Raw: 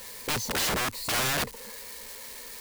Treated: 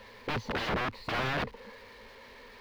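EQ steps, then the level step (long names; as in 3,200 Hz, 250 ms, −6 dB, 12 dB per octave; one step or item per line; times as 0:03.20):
high-frequency loss of the air 330 metres
0.0 dB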